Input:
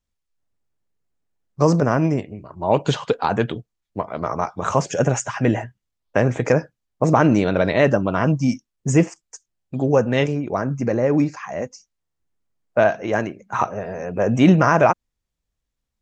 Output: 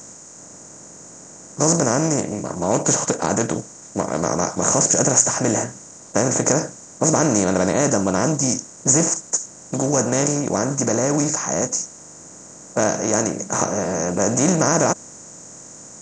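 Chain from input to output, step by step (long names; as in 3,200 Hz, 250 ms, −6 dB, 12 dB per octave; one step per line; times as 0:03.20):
compressor on every frequency bin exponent 0.4
high shelf with overshoot 4,600 Hz +12.5 dB, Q 3
level −8.5 dB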